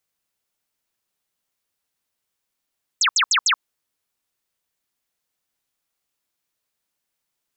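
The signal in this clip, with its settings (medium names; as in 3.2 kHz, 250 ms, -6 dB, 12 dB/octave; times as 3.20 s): burst of laser zaps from 8.3 kHz, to 980 Hz, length 0.08 s sine, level -14.5 dB, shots 4, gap 0.07 s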